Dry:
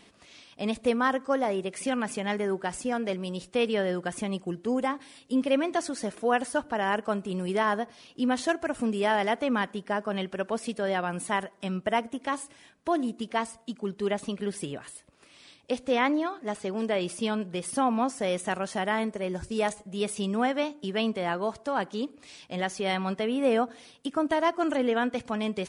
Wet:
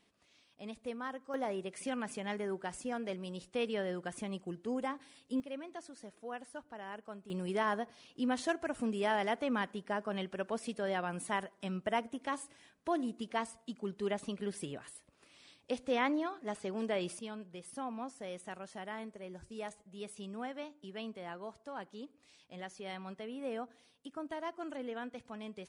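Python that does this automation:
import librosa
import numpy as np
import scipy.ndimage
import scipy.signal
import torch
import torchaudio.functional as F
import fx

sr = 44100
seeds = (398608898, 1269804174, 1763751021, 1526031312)

y = fx.gain(x, sr, db=fx.steps((0.0, -16.0), (1.34, -9.0), (5.4, -18.5), (7.3, -7.0), (17.19, -15.5)))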